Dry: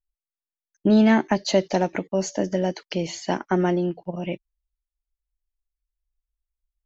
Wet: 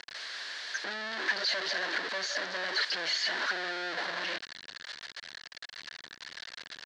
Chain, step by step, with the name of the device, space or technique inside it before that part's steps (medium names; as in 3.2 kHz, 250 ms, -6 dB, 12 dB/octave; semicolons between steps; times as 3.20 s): home computer beeper (one-bit comparator; cabinet simulation 730–4700 Hz, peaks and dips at 830 Hz -6 dB, 1.2 kHz -5 dB, 1.7 kHz +10 dB, 2.5 kHz -5 dB, 4.3 kHz +6 dB); trim -4 dB